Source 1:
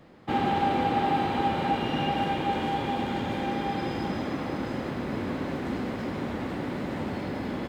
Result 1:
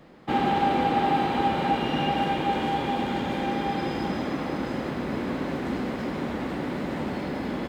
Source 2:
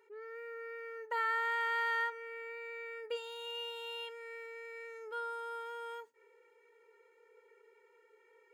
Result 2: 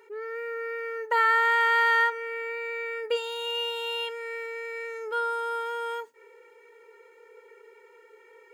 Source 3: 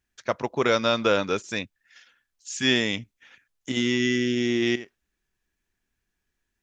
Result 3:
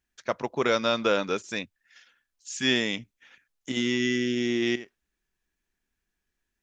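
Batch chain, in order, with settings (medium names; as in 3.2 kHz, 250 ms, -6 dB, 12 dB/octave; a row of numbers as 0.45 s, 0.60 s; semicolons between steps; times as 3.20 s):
peaking EQ 100 Hz -11.5 dB 0.29 oct; normalise loudness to -27 LUFS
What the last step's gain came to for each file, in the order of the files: +2.0 dB, +11.5 dB, -2.5 dB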